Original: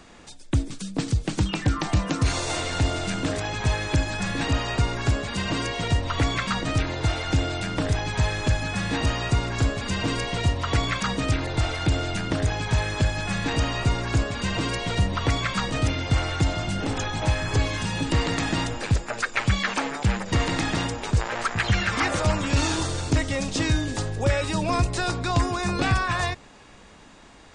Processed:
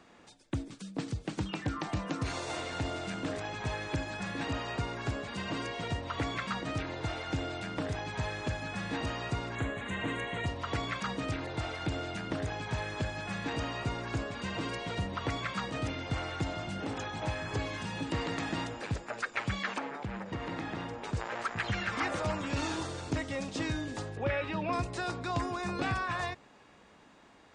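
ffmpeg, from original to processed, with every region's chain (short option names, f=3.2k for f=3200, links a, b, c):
-filter_complex "[0:a]asettb=1/sr,asplit=3[a][b][c];[a]atrim=end=9.554[d];[b]atrim=start=9.55:end=10.46,asetpts=PTS-STARTPTS,afade=t=in:d=0.004:c=qsin,afade=t=out:st=0.906:d=0.004:c=qsin,asuperstop=centerf=5100:order=4:qfactor=1.7,equalizer=f=1.9k:t=o:w=0.38:g=7[e];[c]atrim=start=10.456[f];[d][e]acrossfade=d=0.004:c1=hsin:c2=qsin[g];[g][f]acrossfade=d=0.004:c1=qsin:c2=hsin,asettb=1/sr,asplit=3[h][i][j];[h]atrim=end=19.784[k];[i]atrim=start=19.78:end=21.04,asetpts=PTS-STARTPTS,afade=t=in:d=0.004:c=qsin,afade=t=out:st=1.256:d=0.004:c=qsin,lowpass=f=2.3k:p=1,acompressor=threshold=-25dB:ratio=2:attack=3.2:release=140:knee=1:detection=peak,asplit=2[l][m];[m]adelay=46,volume=-13.5dB[n];[l][n]amix=inputs=2:normalize=0,atrim=end_sample=55566[o];[j]atrim=start=21.036[p];[k][o]acrossfade=d=0.004:c1=hsin:c2=qsin[q];[q][p]acrossfade=d=0.004:c1=qsin:c2=hsin,asettb=1/sr,asplit=3[r][s][t];[r]atrim=end=24.174[u];[s]atrim=start=24.17:end=24.73,asetpts=PTS-STARTPTS,afade=t=in:d=0.004:c=qsin,afade=t=out:st=0.556:d=0.004:c=qsin,lowpass=f=2.7k:t=q:w=1.5,acompressor=mode=upward:threshold=-24dB:ratio=2.5:attack=3.2:release=140:knee=2.83:detection=peak[v];[t]atrim=start=24.726[w];[u][v]acrossfade=d=0.004:c1=hsin:c2=qsin[x];[x][w]acrossfade=d=0.004:c1=qsin:c2=hsin,highpass=f=170:p=1,highshelf=f=3.9k:g=-9,volume=-7dB"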